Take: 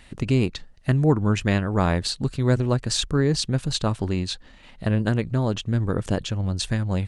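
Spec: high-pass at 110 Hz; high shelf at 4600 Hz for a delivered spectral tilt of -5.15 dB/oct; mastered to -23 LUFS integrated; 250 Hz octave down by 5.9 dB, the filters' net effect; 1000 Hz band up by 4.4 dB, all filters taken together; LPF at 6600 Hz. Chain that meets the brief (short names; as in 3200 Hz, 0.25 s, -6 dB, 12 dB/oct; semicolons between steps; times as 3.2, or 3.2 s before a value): HPF 110 Hz; LPF 6600 Hz; bell 250 Hz -8 dB; bell 1000 Hz +6.5 dB; high shelf 4600 Hz -8 dB; gain +4 dB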